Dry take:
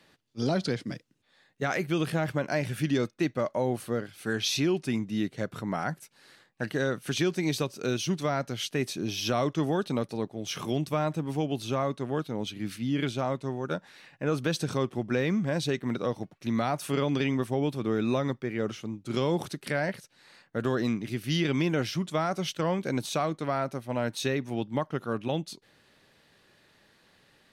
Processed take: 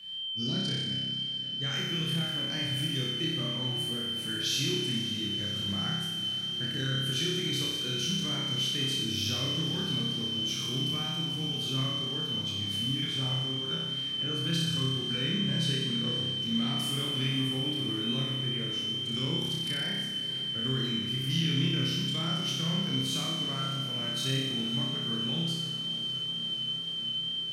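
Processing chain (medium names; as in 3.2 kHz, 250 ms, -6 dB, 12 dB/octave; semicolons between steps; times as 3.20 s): amplifier tone stack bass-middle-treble 6-0-2; in parallel at +0.5 dB: compression, threshold -58 dBFS, peak gain reduction 16 dB; on the sum: whistle 3.1 kHz -54 dBFS; on a send: flutter echo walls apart 5.2 m, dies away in 1.2 s; on the sum: wow and flutter 18 cents; echo that smears into a reverb 549 ms, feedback 79%, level -14 dB; trim +7.5 dB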